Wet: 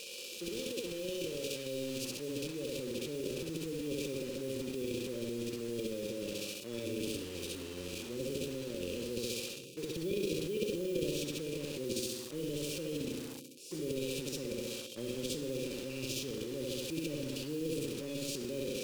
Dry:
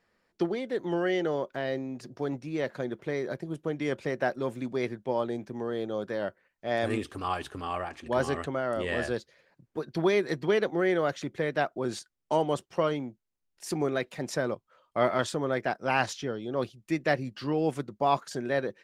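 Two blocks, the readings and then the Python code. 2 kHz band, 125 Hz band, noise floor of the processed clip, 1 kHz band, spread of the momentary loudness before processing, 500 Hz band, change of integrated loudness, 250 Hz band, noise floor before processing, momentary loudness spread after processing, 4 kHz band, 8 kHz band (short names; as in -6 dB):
-13.0 dB, -6.5 dB, -46 dBFS, -27.0 dB, 9 LU, -8.5 dB, -7.5 dB, -6.0 dB, -79 dBFS, 5 LU, +1.0 dB, +4.0 dB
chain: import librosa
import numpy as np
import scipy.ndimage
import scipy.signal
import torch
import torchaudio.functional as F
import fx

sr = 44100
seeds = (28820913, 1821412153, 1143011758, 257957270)

p1 = x + 0.5 * 10.0 ** (-18.5 / 20.0) * np.diff(np.sign(x), prepend=np.sign(x[:1]))
p2 = fx.filter_sweep_bandpass(p1, sr, from_hz=740.0, to_hz=370.0, start_s=1.15, end_s=3.08, q=1.4)
p3 = p2 + fx.room_flutter(p2, sr, wall_m=11.6, rt60_s=0.75, dry=0)
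p4 = fx.hpss(p3, sr, part='percussive', gain_db=-17)
p5 = fx.transient(p4, sr, attack_db=-3, sustain_db=11)
p6 = fx.brickwall_bandstop(p5, sr, low_hz=570.0, high_hz=2300.0)
p7 = fx.dynamic_eq(p6, sr, hz=920.0, q=1.4, threshold_db=-54.0, ratio=4.0, max_db=-4)
p8 = fx.quant_dither(p7, sr, seeds[0], bits=8, dither='none')
p9 = p7 + F.gain(torch.from_numpy(p8), -12.0).numpy()
p10 = fx.spectral_comp(p9, sr, ratio=2.0)
y = F.gain(torch.from_numpy(p10), -8.0).numpy()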